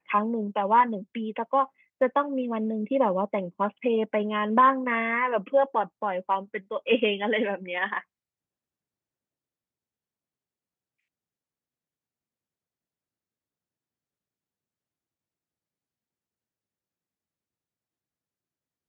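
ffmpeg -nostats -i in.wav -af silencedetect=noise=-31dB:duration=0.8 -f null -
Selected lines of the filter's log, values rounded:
silence_start: 7.99
silence_end: 18.88 | silence_duration: 10.90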